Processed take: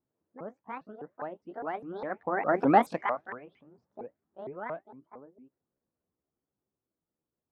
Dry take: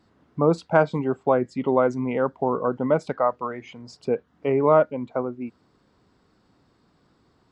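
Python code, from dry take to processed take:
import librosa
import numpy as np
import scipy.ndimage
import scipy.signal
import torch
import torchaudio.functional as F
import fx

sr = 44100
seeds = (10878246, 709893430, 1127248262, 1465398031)

y = fx.pitch_ramps(x, sr, semitones=10.0, every_ms=216)
y = fx.doppler_pass(y, sr, speed_mps=21, closest_m=3.1, pass_at_s=2.67)
y = fx.env_lowpass(y, sr, base_hz=1000.0, full_db=-26.5)
y = y * 10.0 ** (2.5 / 20.0)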